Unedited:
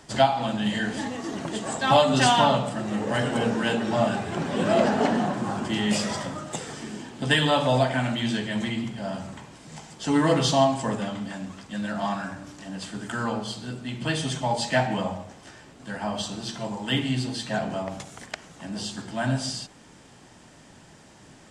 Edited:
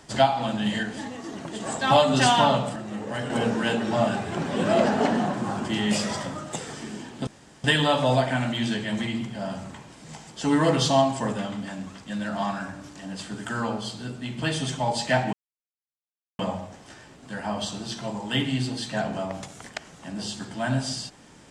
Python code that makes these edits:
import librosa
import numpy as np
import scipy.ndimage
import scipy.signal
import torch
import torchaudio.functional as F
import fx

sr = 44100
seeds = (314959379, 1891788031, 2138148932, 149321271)

y = fx.edit(x, sr, fx.clip_gain(start_s=0.83, length_s=0.77, db=-4.0),
    fx.clip_gain(start_s=2.76, length_s=0.54, db=-5.5),
    fx.insert_room_tone(at_s=7.27, length_s=0.37),
    fx.insert_silence(at_s=14.96, length_s=1.06), tone=tone)